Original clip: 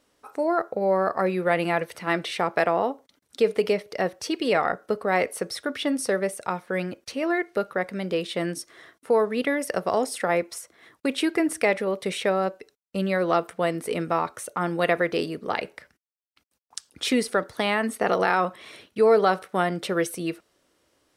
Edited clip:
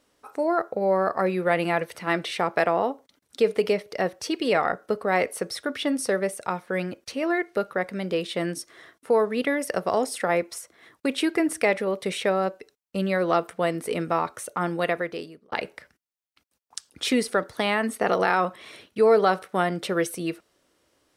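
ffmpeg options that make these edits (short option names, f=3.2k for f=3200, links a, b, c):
-filter_complex "[0:a]asplit=2[a][b];[a]atrim=end=15.52,asetpts=PTS-STARTPTS,afade=t=out:st=14.64:d=0.88[c];[b]atrim=start=15.52,asetpts=PTS-STARTPTS,afade=t=in:d=0.004:c=hsin[d];[c][d]concat=n=2:v=0:a=1"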